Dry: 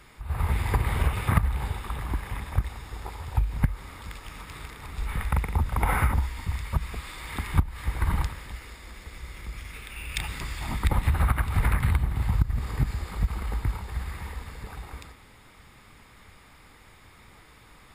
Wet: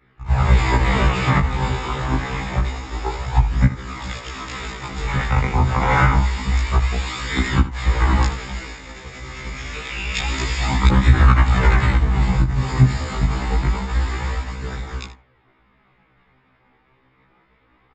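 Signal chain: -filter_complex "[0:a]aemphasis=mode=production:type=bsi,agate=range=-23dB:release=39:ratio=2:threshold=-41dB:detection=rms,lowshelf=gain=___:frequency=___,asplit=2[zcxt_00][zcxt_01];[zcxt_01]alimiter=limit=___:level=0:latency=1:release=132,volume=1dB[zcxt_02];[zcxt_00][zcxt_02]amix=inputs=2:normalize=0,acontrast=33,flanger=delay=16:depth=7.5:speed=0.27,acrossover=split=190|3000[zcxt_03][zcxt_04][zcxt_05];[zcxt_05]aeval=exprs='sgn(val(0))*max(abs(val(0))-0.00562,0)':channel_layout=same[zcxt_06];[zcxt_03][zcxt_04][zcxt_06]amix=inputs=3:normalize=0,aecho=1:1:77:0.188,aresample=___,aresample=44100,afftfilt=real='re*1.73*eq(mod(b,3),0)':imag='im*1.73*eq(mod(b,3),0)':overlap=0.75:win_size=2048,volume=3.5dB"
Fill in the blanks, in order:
11, 490, -14dB, 16000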